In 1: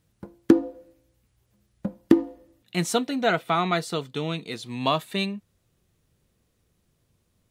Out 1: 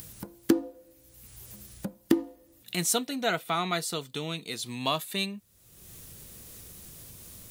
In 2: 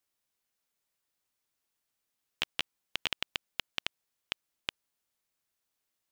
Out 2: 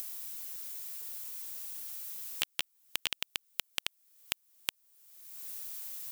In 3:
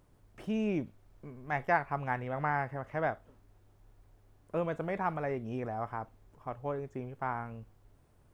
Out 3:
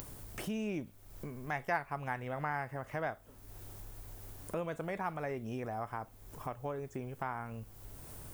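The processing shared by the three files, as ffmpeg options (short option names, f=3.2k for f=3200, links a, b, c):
-af "acompressor=mode=upward:threshold=-26dB:ratio=2.5,aemphasis=mode=production:type=75kf,volume=-6.5dB"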